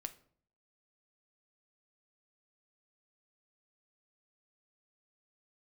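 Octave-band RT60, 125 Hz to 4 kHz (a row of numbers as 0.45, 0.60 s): 0.75, 0.70, 0.60, 0.50, 0.40, 0.35 s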